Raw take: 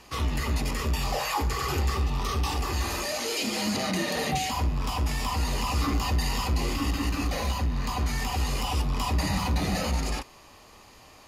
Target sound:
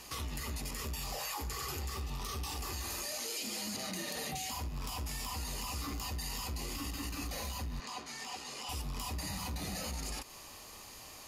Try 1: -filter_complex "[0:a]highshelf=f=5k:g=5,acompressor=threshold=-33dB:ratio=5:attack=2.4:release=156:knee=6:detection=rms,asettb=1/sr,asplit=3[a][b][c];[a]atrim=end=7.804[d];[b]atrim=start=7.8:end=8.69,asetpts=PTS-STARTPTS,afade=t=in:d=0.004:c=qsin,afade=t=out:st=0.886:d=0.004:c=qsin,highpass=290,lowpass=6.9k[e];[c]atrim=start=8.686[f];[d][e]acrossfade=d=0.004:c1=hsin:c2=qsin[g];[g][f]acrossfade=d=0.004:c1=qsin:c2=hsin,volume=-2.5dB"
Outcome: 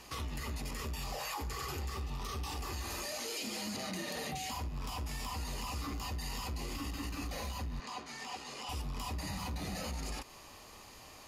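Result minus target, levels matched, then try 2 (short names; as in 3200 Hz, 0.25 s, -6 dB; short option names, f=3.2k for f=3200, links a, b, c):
8000 Hz band -3.5 dB
-filter_complex "[0:a]highshelf=f=5k:g=13.5,acompressor=threshold=-33dB:ratio=5:attack=2.4:release=156:knee=6:detection=rms,asettb=1/sr,asplit=3[a][b][c];[a]atrim=end=7.804[d];[b]atrim=start=7.8:end=8.69,asetpts=PTS-STARTPTS,afade=t=in:d=0.004:c=qsin,afade=t=out:st=0.886:d=0.004:c=qsin,highpass=290,lowpass=6.9k[e];[c]atrim=start=8.686[f];[d][e]acrossfade=d=0.004:c1=hsin:c2=qsin[g];[g][f]acrossfade=d=0.004:c1=qsin:c2=hsin,volume=-2.5dB"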